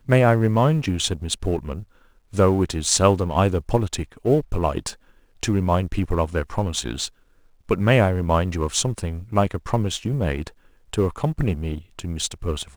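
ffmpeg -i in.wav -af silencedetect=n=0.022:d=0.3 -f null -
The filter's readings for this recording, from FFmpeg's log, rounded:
silence_start: 1.83
silence_end: 2.33 | silence_duration: 0.50
silence_start: 4.93
silence_end: 5.43 | silence_duration: 0.50
silence_start: 7.08
silence_end: 7.69 | silence_duration: 0.61
silence_start: 10.48
silence_end: 10.93 | silence_duration: 0.45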